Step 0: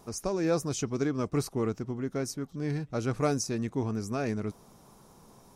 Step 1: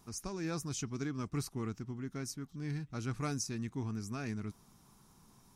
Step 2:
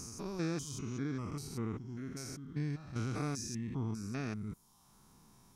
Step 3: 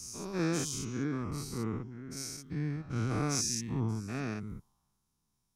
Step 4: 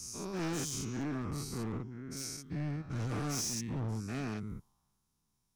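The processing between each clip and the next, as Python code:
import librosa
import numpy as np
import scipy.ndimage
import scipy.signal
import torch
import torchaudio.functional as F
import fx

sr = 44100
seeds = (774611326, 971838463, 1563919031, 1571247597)

y1 = fx.peak_eq(x, sr, hz=540.0, db=-13.5, octaves=1.1)
y1 = y1 * 10.0 ** (-4.5 / 20.0)
y2 = fx.spec_steps(y1, sr, hold_ms=200)
y2 = fx.dereverb_blind(y2, sr, rt60_s=0.82)
y2 = y2 * 10.0 ** (4.5 / 20.0)
y3 = fx.spec_dilate(y2, sr, span_ms=120)
y3 = fx.band_widen(y3, sr, depth_pct=100)
y3 = y3 * 10.0 ** (1.0 / 20.0)
y4 = np.clip(y3, -10.0 ** (-32.5 / 20.0), 10.0 ** (-32.5 / 20.0))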